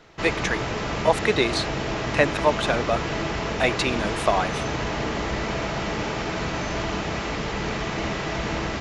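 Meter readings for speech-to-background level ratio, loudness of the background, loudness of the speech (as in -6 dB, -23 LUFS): 2.5 dB, -27.5 LUFS, -25.0 LUFS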